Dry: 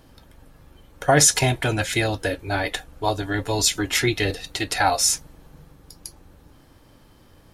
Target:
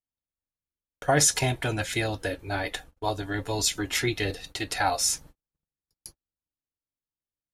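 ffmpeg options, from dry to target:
ffmpeg -i in.wav -af "agate=range=-45dB:threshold=-39dB:ratio=16:detection=peak,volume=-5.5dB" out.wav

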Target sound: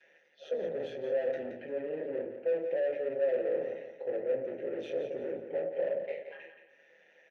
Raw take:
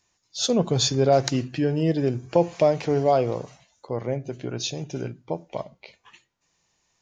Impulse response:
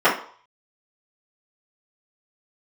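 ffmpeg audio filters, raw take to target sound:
-filter_complex "[0:a]equalizer=frequency=110:width_type=o:width=2.6:gain=12.5,bandreject=frequency=60:width_type=h:width=6,bandreject=frequency=120:width_type=h:width=6,bandreject=frequency=180:width_type=h:width=6,bandreject=frequency=240:width_type=h:width=6,bandreject=frequency=300:width_type=h:width=6,asetrate=42336,aresample=44100,acrossover=split=590|1200[link_01][link_02][link_03];[link_03]acompressor=mode=upward:threshold=-47dB:ratio=2.5[link_04];[link_01][link_02][link_04]amix=inputs=3:normalize=0[link_05];[1:a]atrim=start_sample=2205,afade=type=out:start_time=0.19:duration=0.01,atrim=end_sample=8820,asetrate=48510,aresample=44100[link_06];[link_05][link_06]afir=irnorm=-1:irlink=0,areverse,acompressor=threshold=-13dB:ratio=4,areverse,asoftclip=type=tanh:threshold=-19dB,tremolo=f=150:d=0.621,asplit=3[link_07][link_08][link_09];[link_07]bandpass=frequency=530:width_type=q:width=8,volume=0dB[link_10];[link_08]bandpass=frequency=1840:width_type=q:width=8,volume=-6dB[link_11];[link_09]bandpass=frequency=2480:width_type=q:width=8,volume=-9dB[link_12];[link_10][link_11][link_12]amix=inputs=3:normalize=0,highshelf=frequency=2200:gain=-11,aecho=1:1:173|346|519|692:0.355|0.114|0.0363|0.0116"

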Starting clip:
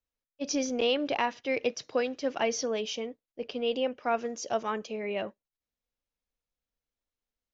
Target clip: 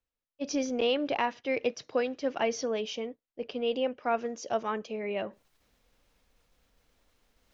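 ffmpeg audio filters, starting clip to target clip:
ffmpeg -i in.wav -af "highshelf=frequency=5400:gain=-9,areverse,acompressor=mode=upward:threshold=-48dB:ratio=2.5,areverse" out.wav

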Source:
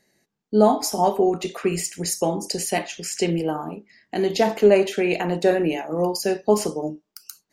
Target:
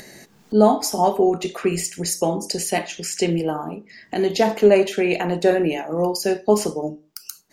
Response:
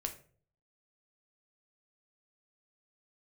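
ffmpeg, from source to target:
-filter_complex "[0:a]acompressor=mode=upward:threshold=-27dB:ratio=2.5,asplit=2[link_01][link_02];[1:a]atrim=start_sample=2205,atrim=end_sample=6615,asetrate=36162,aresample=44100[link_03];[link_02][link_03]afir=irnorm=-1:irlink=0,volume=-14.5dB[link_04];[link_01][link_04]amix=inputs=2:normalize=0"

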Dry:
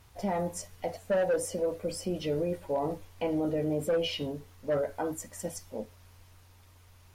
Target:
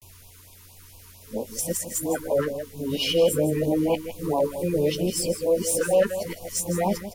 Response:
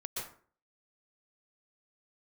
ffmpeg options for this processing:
-filter_complex "[0:a]areverse,highshelf=frequency=6400:gain=12,acrossover=split=1800[link_01][link_02];[link_02]asoftclip=type=hard:threshold=-29dB[link_03];[link_01][link_03]amix=inputs=2:normalize=0,asplit=2[link_04][link_05];[link_05]adelay=18,volume=-13dB[link_06];[link_04][link_06]amix=inputs=2:normalize=0,asplit=2[link_07][link_08];[link_08]aecho=0:1:160:0.282[link_09];[link_07][link_09]amix=inputs=2:normalize=0,afftfilt=real='re*(1-between(b*sr/1024,620*pow(1700/620,0.5+0.5*sin(2*PI*4.4*pts/sr))/1.41,620*pow(1700/620,0.5+0.5*sin(2*PI*4.4*pts/sr))*1.41))':imag='im*(1-between(b*sr/1024,620*pow(1700/620,0.5+0.5*sin(2*PI*4.4*pts/sr))/1.41,620*pow(1700/620,0.5+0.5*sin(2*PI*4.4*pts/sr))*1.41))':win_size=1024:overlap=0.75,volume=7dB"

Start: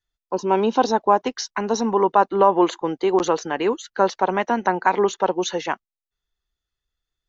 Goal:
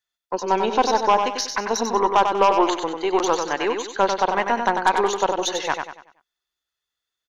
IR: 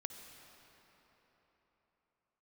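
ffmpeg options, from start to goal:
-af "highpass=frequency=720:poles=1,aeval=exprs='0.531*(cos(1*acos(clip(val(0)/0.531,-1,1)))-cos(1*PI/2))+0.0376*(cos(4*acos(clip(val(0)/0.531,-1,1)))-cos(4*PI/2))+0.119*(cos(5*acos(clip(val(0)/0.531,-1,1)))-cos(5*PI/2))+0.0596*(cos(7*acos(clip(val(0)/0.531,-1,1)))-cos(7*PI/2))+0.00596*(cos(8*acos(clip(val(0)/0.531,-1,1)))-cos(8*PI/2))':channel_layout=same,aecho=1:1:95|190|285|380|475:0.501|0.19|0.0724|0.0275|0.0105"

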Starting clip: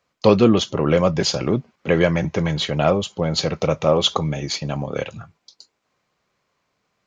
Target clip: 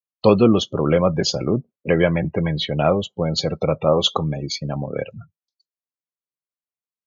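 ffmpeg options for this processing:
ffmpeg -i in.wav -af "afftdn=noise_reduction=36:noise_floor=-28" out.wav

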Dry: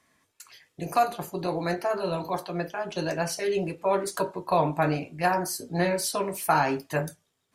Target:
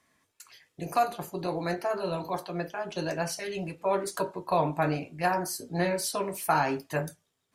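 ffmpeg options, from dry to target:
ffmpeg -i in.wav -filter_complex "[0:a]asettb=1/sr,asplit=3[link_01][link_02][link_03];[link_01]atrim=end=3.314[link_04];[link_02]atrim=start=3.31:end=3.81,asetpts=PTS-STARTPTS,afade=type=in:duration=0.004:curve=qsin,afade=type=out:start_time=0.496:duration=0.004:curve=qsin,equalizer=frequency=410:width_type=o:width=0.77:gain=-7.5[link_05];[link_03]atrim=start=3.806[link_06];[link_04][link_05]acrossfade=duration=0.004:curve1=hsin:curve2=qsin[link_07];[link_07][link_06]acrossfade=duration=0.004:curve1=qsin:curve2=hsin,volume=-2.5dB" out.wav

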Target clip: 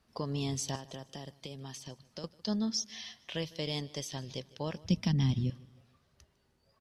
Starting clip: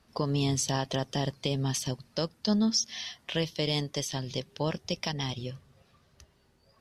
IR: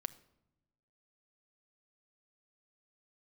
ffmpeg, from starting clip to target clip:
-filter_complex "[0:a]asettb=1/sr,asplit=3[link_01][link_02][link_03];[link_01]atrim=end=0.754[link_04];[link_02]atrim=start=0.75:end=2.24,asetpts=PTS-STARTPTS,afade=type=in:duration=0.004:curve=qsin,afade=type=out:start_time=1.486:duration=0.004:curve=qsin,acrossover=split=420|7800[link_05][link_06][link_07];[link_05]acompressor=threshold=-39dB:ratio=4[link_08];[link_06]acompressor=threshold=-40dB:ratio=4[link_09];[link_07]acompressor=threshold=-51dB:ratio=4[link_10];[link_08][link_09][link_10]amix=inputs=3:normalize=0[link_11];[link_03]atrim=start=2.236[link_12];[link_04][link_11]acrossfade=duration=0.004:curve1=hsin:curve2=qsin[link_13];[link_13][link_12]acrossfade=duration=0.004:curve1=qsin:curve2=hsin,asettb=1/sr,asplit=3[link_14][link_15][link_16];[link_14]atrim=end=4.844[link_17];[link_15]atrim=start=4.84:end=5.5,asetpts=PTS-STARTPTS,afade=type=in:duration=0.004:curve=qsin,afade=type=out:start_time=0.656:duration=0.004:curve=qsin,lowshelf=frequency=330:width_type=q:width=1.5:gain=12.5[link_18];[link_16]atrim=start=5.496[link_19];[link_17][link_18]acrossfade=duration=0.004:curve1=hsin:curve2=qsin[link_20];[link_20][link_19]acrossfade=duration=0.004:curve1=qsin:curve2=hsin,aecho=1:1:153|306|459:0.0794|0.035|0.0154,volume=-6.5dB"

